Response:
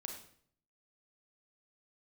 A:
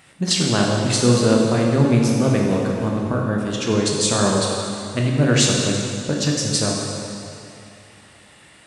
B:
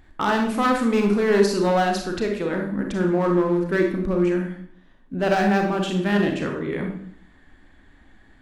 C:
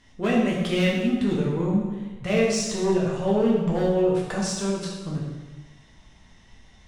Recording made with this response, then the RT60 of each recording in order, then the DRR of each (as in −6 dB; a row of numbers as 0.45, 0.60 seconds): B; 2.6, 0.60, 1.2 seconds; −2.0, 2.0, −4.5 decibels